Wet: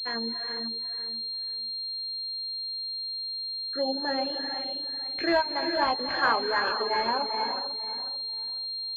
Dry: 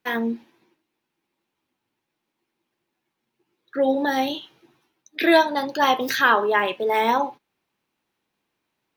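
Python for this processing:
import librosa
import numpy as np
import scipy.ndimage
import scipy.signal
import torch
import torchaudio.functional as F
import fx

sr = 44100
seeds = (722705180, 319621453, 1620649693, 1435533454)

p1 = fx.tilt_shelf(x, sr, db=-3.5, hz=970.0)
p2 = p1 + fx.echo_feedback(p1, sr, ms=495, feedback_pct=22, wet_db=-11.0, dry=0)
p3 = fx.rev_gated(p2, sr, seeds[0], gate_ms=460, shape='rising', drr_db=3.5)
p4 = fx.dereverb_blind(p3, sr, rt60_s=0.54)
p5 = fx.pwm(p4, sr, carrier_hz=4200.0)
y = F.gain(torch.from_numpy(p5), -6.5).numpy()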